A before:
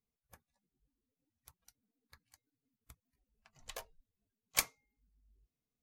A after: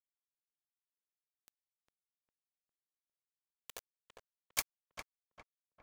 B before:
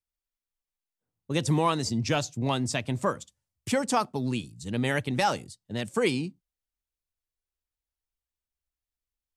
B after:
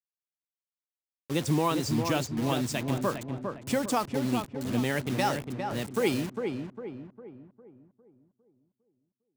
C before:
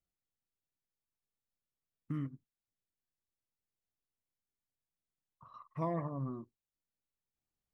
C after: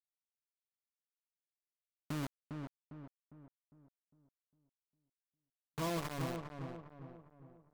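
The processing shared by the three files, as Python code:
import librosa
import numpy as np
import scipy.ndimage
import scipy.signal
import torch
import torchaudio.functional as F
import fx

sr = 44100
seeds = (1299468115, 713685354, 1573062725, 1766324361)

y = fx.dynamic_eq(x, sr, hz=310.0, q=1.2, threshold_db=-38.0, ratio=4.0, max_db=4)
y = fx.quant_dither(y, sr, seeds[0], bits=6, dither='none')
y = fx.echo_filtered(y, sr, ms=404, feedback_pct=46, hz=1500.0, wet_db=-5.0)
y = F.gain(torch.from_numpy(y), -3.5).numpy()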